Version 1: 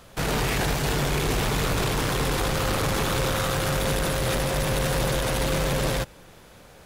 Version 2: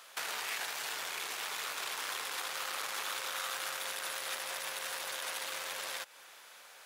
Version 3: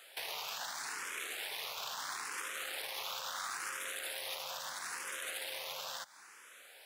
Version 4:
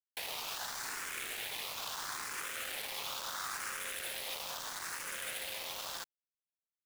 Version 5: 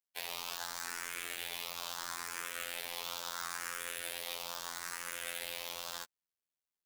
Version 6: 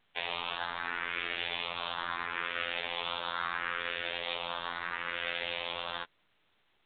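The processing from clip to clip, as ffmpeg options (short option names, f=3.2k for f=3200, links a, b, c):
-af "acompressor=threshold=-31dB:ratio=6,highpass=1.1k"
-filter_complex "[0:a]asoftclip=type=tanh:threshold=-27.5dB,asplit=2[a][b];[b]afreqshift=0.75[c];[a][c]amix=inputs=2:normalize=1,volume=1dB"
-af "acrusher=bits=6:mix=0:aa=0.000001"
-af "afftfilt=real='hypot(re,im)*cos(PI*b)':imag='0':win_size=2048:overlap=0.75,volume=2.5dB"
-af "volume=8dB" -ar 8000 -c:a pcm_alaw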